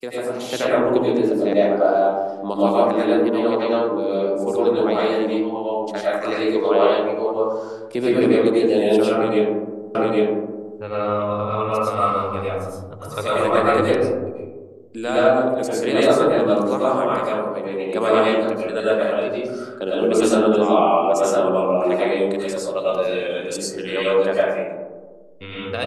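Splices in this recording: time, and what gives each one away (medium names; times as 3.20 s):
9.95 s: repeat of the last 0.81 s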